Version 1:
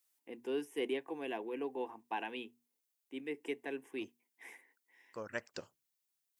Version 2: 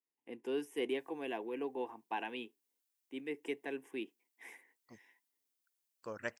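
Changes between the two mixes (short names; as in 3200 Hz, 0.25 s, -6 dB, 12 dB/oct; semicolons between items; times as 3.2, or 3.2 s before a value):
first voice: remove notches 60/120/180/240 Hz; second voice: entry +0.90 s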